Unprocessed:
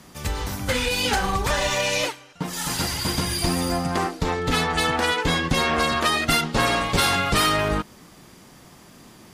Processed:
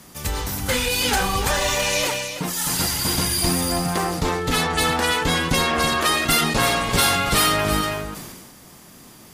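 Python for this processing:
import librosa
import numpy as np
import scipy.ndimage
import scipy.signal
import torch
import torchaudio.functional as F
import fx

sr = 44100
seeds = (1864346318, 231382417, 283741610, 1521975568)

y = fx.high_shelf(x, sr, hz=8600.0, db=11.5)
y = y + 10.0 ** (-9.5 / 20.0) * np.pad(y, (int(327 * sr / 1000.0), 0))[:len(y)]
y = fx.sustainer(y, sr, db_per_s=34.0)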